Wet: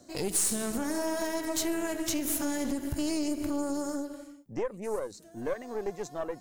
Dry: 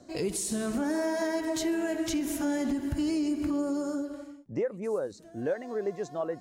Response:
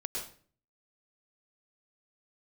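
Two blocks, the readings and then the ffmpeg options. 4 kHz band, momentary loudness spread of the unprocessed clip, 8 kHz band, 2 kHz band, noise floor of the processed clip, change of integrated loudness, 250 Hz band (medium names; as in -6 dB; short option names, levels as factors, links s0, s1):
+2.0 dB, 5 LU, +6.0 dB, -1.0 dB, -53 dBFS, -1.0 dB, -3.0 dB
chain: -af "aemphasis=mode=production:type=50kf,aeval=exprs='0.251*(cos(1*acos(clip(val(0)/0.251,-1,1)))-cos(1*PI/2))+0.02*(cos(8*acos(clip(val(0)/0.251,-1,1)))-cos(8*PI/2))':c=same,volume=0.708"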